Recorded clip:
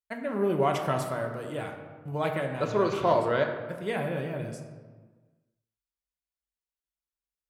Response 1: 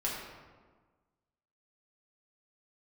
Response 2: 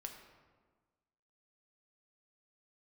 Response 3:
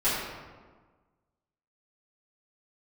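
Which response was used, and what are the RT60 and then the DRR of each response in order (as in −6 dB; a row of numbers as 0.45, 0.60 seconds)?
2; 1.4, 1.4, 1.4 seconds; −6.0, 2.5, −14.5 decibels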